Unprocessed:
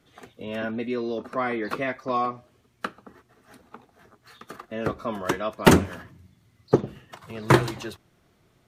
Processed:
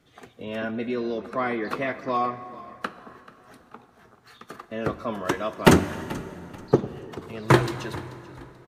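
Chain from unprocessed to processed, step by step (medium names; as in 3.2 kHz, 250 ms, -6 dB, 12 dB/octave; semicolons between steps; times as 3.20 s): treble shelf 11 kHz -4 dB; on a send: frequency-shifting echo 435 ms, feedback 30%, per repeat -36 Hz, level -19 dB; on the sum: plate-style reverb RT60 3.4 s, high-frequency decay 0.65×, DRR 13.5 dB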